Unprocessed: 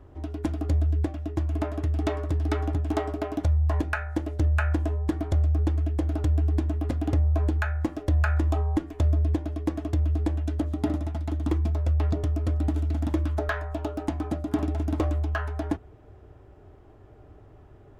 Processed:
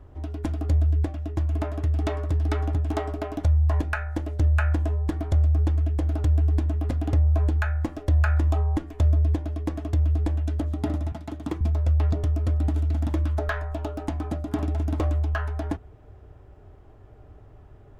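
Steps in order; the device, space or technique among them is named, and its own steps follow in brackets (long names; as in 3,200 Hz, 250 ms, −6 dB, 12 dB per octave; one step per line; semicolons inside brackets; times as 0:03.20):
low shelf boost with a cut just above (low-shelf EQ 69 Hz +6 dB; parametric band 330 Hz −3.5 dB 0.54 octaves)
0:11.12–0:11.61: high-pass filter 110 Hz 24 dB per octave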